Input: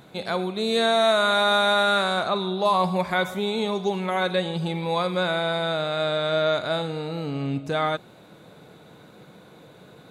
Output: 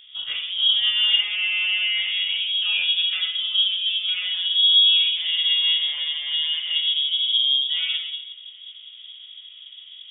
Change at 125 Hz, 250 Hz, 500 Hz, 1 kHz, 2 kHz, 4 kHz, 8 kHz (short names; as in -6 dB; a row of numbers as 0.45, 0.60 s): under -35 dB, under -40 dB, under -35 dB, under -25 dB, +0.5 dB, +12.5 dB, under -35 dB